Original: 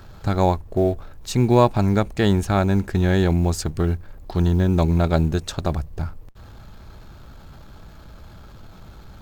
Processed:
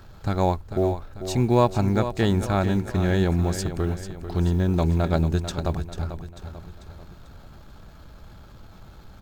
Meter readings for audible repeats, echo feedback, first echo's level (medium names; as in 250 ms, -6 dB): 4, 47%, -10.5 dB